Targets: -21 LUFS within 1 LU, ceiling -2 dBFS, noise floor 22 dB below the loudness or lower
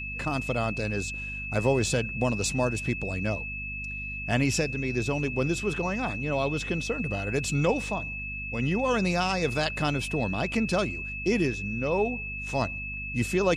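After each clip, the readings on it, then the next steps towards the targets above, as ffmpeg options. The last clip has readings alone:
hum 50 Hz; highest harmonic 250 Hz; hum level -37 dBFS; steady tone 2.6 kHz; tone level -34 dBFS; loudness -28.0 LUFS; peak level -11.0 dBFS; loudness target -21.0 LUFS
-> -af "bandreject=f=50:t=h:w=6,bandreject=f=100:t=h:w=6,bandreject=f=150:t=h:w=6,bandreject=f=200:t=h:w=6,bandreject=f=250:t=h:w=6"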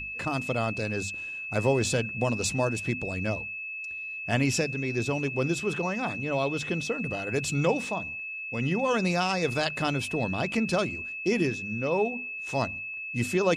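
hum not found; steady tone 2.6 kHz; tone level -34 dBFS
-> -af "bandreject=f=2600:w=30"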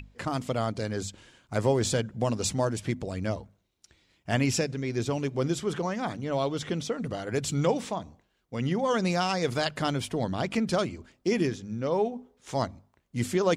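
steady tone not found; loudness -29.5 LUFS; peak level -12.0 dBFS; loudness target -21.0 LUFS
-> -af "volume=2.66"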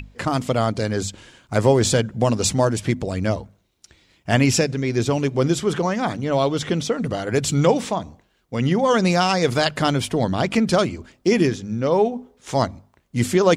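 loudness -21.0 LUFS; peak level -3.5 dBFS; noise floor -63 dBFS

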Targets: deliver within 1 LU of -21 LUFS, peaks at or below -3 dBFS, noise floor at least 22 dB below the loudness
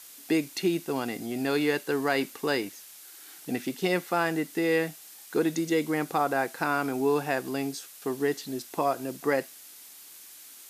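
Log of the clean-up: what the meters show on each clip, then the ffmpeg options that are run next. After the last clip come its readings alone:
noise floor -49 dBFS; noise floor target -51 dBFS; loudness -28.5 LUFS; peak level -11.5 dBFS; loudness target -21.0 LUFS
-> -af "afftdn=nr=6:nf=-49"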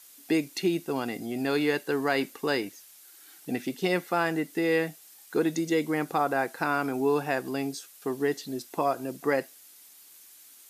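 noise floor -53 dBFS; loudness -29.0 LUFS; peak level -11.5 dBFS; loudness target -21.0 LUFS
-> -af "volume=2.51"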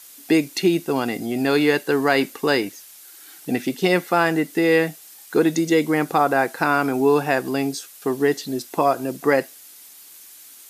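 loudness -21.0 LUFS; peak level -3.5 dBFS; noise floor -45 dBFS

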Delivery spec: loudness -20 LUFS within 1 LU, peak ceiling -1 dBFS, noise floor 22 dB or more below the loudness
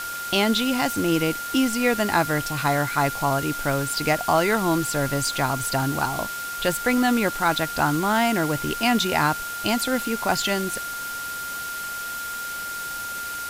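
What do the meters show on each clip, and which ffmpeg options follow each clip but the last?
steady tone 1.4 kHz; tone level -30 dBFS; noise floor -32 dBFS; noise floor target -46 dBFS; loudness -23.5 LUFS; peak level -7.5 dBFS; loudness target -20.0 LUFS
-> -af "bandreject=f=1400:w=30"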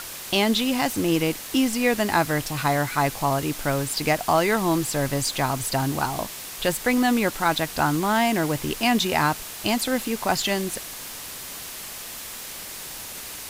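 steady tone not found; noise floor -37 dBFS; noise floor target -46 dBFS
-> -af "afftdn=nr=9:nf=-37"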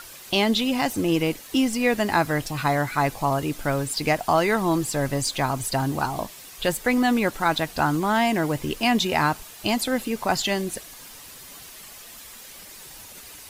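noise floor -43 dBFS; noise floor target -46 dBFS
-> -af "afftdn=nr=6:nf=-43"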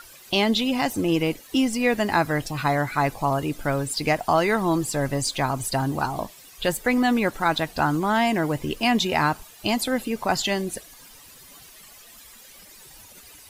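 noise floor -48 dBFS; loudness -23.5 LUFS; peak level -8.5 dBFS; loudness target -20.0 LUFS
-> -af "volume=1.5"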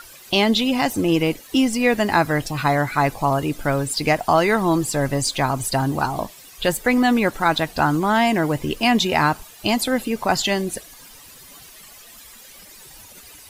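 loudness -20.0 LUFS; peak level -5.0 dBFS; noise floor -44 dBFS

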